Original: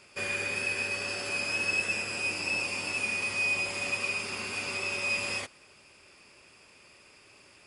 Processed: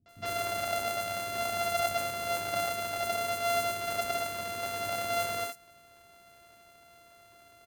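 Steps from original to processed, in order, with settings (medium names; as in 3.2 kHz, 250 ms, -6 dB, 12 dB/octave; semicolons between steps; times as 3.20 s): sorted samples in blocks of 64 samples; three bands offset in time lows, mids, highs 60/90 ms, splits 240/5900 Hz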